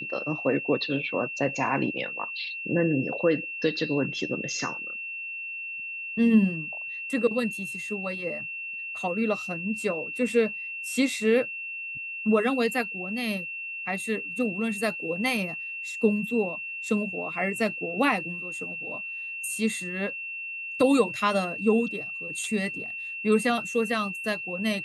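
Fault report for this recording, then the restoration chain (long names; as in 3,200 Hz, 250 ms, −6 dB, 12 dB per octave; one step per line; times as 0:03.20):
whistle 2,700 Hz −33 dBFS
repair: notch filter 2,700 Hz, Q 30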